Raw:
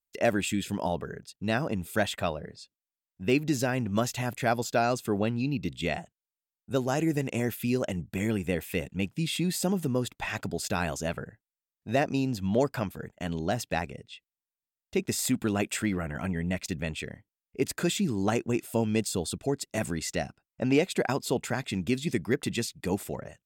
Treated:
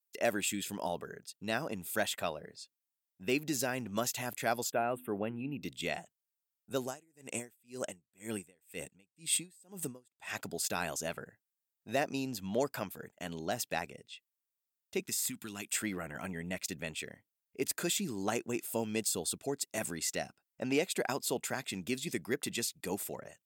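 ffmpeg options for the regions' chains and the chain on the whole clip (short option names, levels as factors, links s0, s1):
-filter_complex "[0:a]asettb=1/sr,asplit=3[s0][s1][s2];[s0]atrim=end=4.724[s3];[s1]atrim=start=4.72:end=5.62,asetpts=PTS-STARTPTS,afade=t=in:d=0.004:c=qsin,afade=t=out:st=0.896:d=0.004:c=qsin,asuperstop=centerf=5500:order=8:qfactor=0.95,highshelf=f=2100:g=-8.5,bandreject=f=83.29:t=h:w=4,bandreject=f=166.58:t=h:w=4,bandreject=f=249.87:t=h:w=4,bandreject=f=333.16:t=h:w=4[s4];[s2]atrim=start=5.616[s5];[s3][s4]acrossfade=d=0.004:c1=hsin:c2=qsin[s6];[s6][s5]acrossfade=d=0.004:c1=qsin:c2=hsin,asettb=1/sr,asplit=3[s7][s8][s9];[s7]atrim=end=6.844[s10];[s8]atrim=start=6.84:end=10.31,asetpts=PTS-STARTPTS,afade=t=in:d=0.004:c=qsin,afade=t=out:st=3.466:d=0.004:c=qsin,equalizer=f=8200:w=5.4:g=13,aeval=exprs='val(0)*pow(10,-37*(0.5-0.5*cos(2*PI*2*n/s))/20)':c=same[s11];[s9]atrim=start=10.306[s12];[s10][s11]acrossfade=d=0.004:c1=hsin:c2=qsin[s13];[s13][s12]acrossfade=d=0.004:c1=qsin:c2=hsin,asettb=1/sr,asplit=3[s14][s15][s16];[s14]atrim=end=15.004[s17];[s15]atrim=start=15:end=15.74,asetpts=PTS-STARTPTS,afade=t=in:d=0.004:c=qsin,afade=t=out:st=0.736:d=0.004:c=qsin,acrossover=split=1200|2700[s18][s19][s20];[s18]acompressor=threshold=0.0316:ratio=4[s21];[s19]acompressor=threshold=0.00398:ratio=4[s22];[s20]acompressor=threshold=0.0224:ratio=4[s23];[s21][s22][s23]amix=inputs=3:normalize=0,equalizer=f=560:t=o:w=1:g=-12.5[s24];[s16]atrim=start=15.736[s25];[s17][s24]acrossfade=d=0.004:c1=hsin:c2=qsin[s26];[s26][s25]acrossfade=d=0.004:c1=qsin:c2=hsin,highpass=f=300:p=1,highshelf=f=7100:g=11,volume=0.562"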